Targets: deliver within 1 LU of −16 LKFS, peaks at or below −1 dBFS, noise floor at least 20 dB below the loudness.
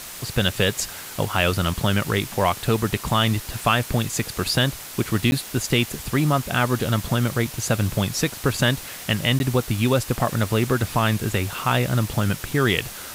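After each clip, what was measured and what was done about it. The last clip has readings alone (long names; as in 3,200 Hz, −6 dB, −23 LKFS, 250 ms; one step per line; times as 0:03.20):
number of dropouts 2; longest dropout 11 ms; background noise floor −37 dBFS; target noise floor −43 dBFS; integrated loudness −22.5 LKFS; sample peak −4.5 dBFS; target loudness −16.0 LKFS
→ repair the gap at 0:05.31/0:09.39, 11 ms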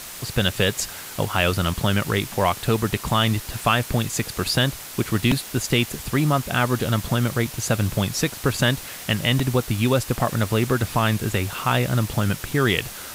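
number of dropouts 0; background noise floor −37 dBFS; target noise floor −43 dBFS
→ broadband denoise 6 dB, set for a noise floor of −37 dBFS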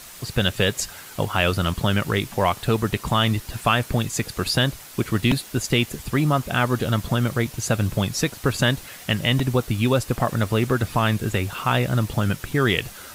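background noise floor −42 dBFS; target noise floor −43 dBFS
→ broadband denoise 6 dB, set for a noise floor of −42 dBFS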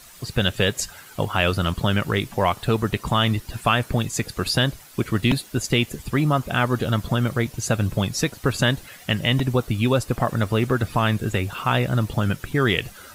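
background noise floor −46 dBFS; integrated loudness −23.0 LKFS; sample peak −4.5 dBFS; target loudness −16.0 LKFS
→ level +7 dB
brickwall limiter −1 dBFS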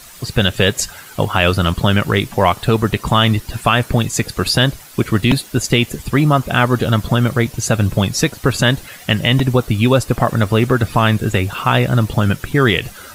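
integrated loudness −16.0 LKFS; sample peak −1.0 dBFS; background noise floor −39 dBFS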